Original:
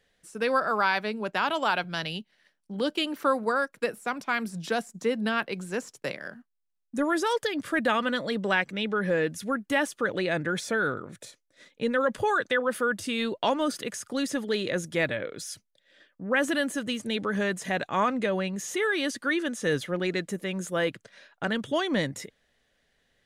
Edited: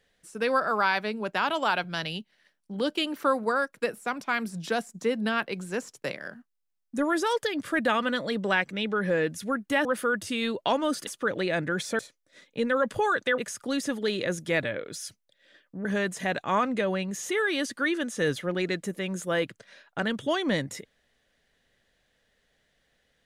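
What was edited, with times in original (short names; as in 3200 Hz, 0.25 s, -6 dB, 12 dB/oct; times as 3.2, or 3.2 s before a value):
10.77–11.23 cut
12.62–13.84 move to 9.85
16.31–17.3 cut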